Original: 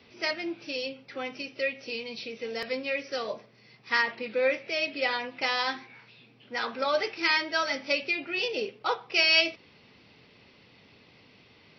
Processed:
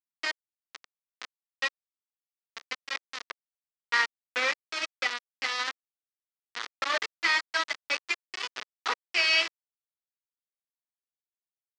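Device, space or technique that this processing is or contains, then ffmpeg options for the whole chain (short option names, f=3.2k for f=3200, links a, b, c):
hand-held game console: -af "acrusher=bits=3:mix=0:aa=0.000001,highpass=460,equalizer=f=550:t=q:w=4:g=-7,equalizer=f=780:t=q:w=4:g=-4,equalizer=f=1.2k:t=q:w=4:g=4,equalizer=f=1.9k:t=q:w=4:g=5,lowpass=f=5.5k:w=0.5412,lowpass=f=5.5k:w=1.3066,volume=-2.5dB"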